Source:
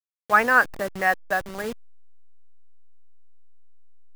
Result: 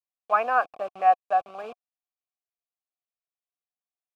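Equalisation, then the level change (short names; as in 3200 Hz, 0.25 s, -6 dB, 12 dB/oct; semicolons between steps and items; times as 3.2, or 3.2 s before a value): vowel filter a; +7.0 dB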